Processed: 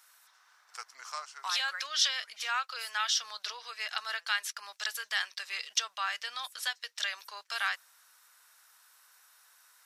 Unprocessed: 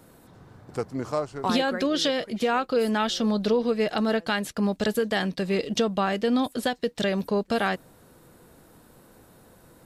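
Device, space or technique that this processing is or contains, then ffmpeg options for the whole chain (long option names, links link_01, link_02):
headphones lying on a table: -af "highpass=frequency=1200:width=0.5412,highpass=frequency=1200:width=1.3066,equalizer=frequency=5700:width_type=o:width=0.36:gain=8,volume=-1.5dB"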